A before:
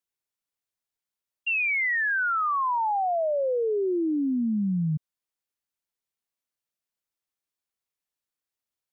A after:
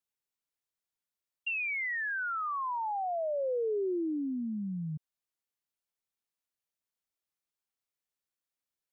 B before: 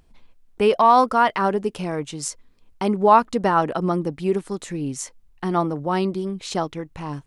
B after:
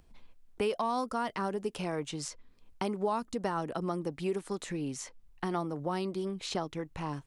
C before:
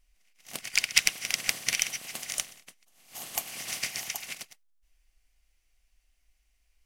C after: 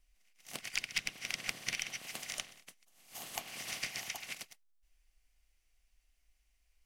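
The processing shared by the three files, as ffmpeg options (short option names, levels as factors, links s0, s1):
-filter_complex "[0:a]acrossover=split=400|5000[s0][s1][s2];[s0]acompressor=threshold=0.0224:ratio=4[s3];[s1]acompressor=threshold=0.0316:ratio=4[s4];[s2]acompressor=threshold=0.00708:ratio=4[s5];[s3][s4][s5]amix=inputs=3:normalize=0,volume=0.668"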